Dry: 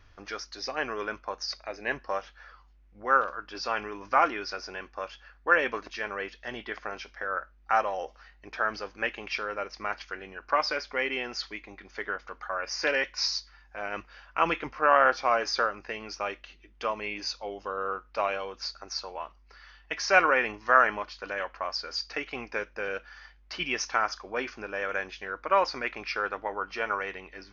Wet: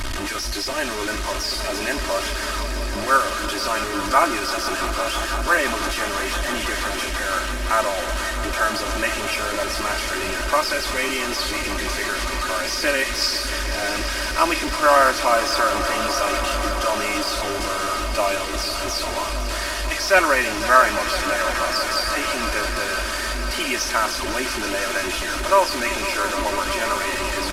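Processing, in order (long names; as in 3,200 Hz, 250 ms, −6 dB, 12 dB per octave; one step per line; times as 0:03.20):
linear delta modulator 64 kbit/s, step −27 dBFS
comb filter 3.2 ms, depth 90%
echo that builds up and dies away 167 ms, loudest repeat 5, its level −14 dB
level +3.5 dB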